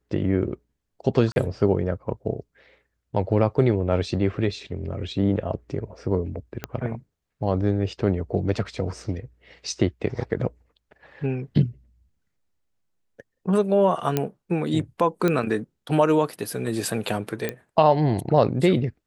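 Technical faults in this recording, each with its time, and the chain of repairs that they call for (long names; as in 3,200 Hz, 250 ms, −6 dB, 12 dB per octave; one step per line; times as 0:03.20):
0:01.32–0:01.36: drop-out 41 ms
0:06.64: click −13 dBFS
0:14.17: click −8 dBFS
0:15.28: click −10 dBFS
0:17.49: click −12 dBFS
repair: click removal
repair the gap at 0:01.32, 41 ms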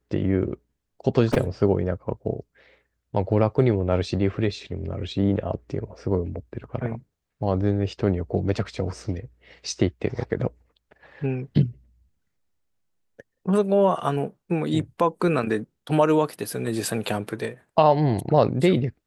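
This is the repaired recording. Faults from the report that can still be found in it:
0:06.64: click
0:15.28: click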